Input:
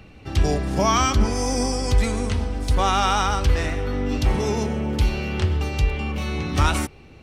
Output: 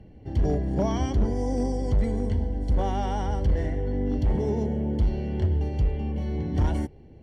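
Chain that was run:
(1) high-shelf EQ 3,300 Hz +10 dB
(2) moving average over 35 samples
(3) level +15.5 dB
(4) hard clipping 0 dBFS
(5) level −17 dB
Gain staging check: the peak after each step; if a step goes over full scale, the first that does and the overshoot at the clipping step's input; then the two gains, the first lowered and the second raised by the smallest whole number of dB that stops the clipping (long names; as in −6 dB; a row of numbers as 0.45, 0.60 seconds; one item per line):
−5.0, −8.5, +7.0, 0.0, −17.0 dBFS
step 3, 7.0 dB
step 3 +8.5 dB, step 5 −10 dB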